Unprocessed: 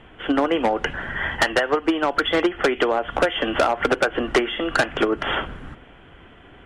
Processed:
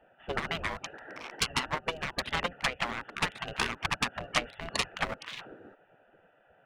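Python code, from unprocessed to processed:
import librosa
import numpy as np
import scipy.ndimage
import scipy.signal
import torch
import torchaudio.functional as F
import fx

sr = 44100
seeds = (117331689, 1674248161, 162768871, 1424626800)

y = fx.wiener(x, sr, points=41)
y = fx.spec_gate(y, sr, threshold_db=-15, keep='weak')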